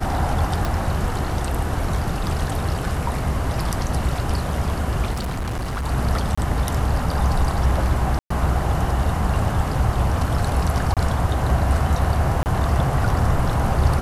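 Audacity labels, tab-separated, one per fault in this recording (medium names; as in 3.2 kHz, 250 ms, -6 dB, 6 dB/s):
0.650000	0.650000	pop
5.120000	5.870000	clipped -22.5 dBFS
6.350000	6.380000	dropout 25 ms
8.190000	8.300000	dropout 114 ms
10.940000	10.970000	dropout 27 ms
12.430000	12.460000	dropout 29 ms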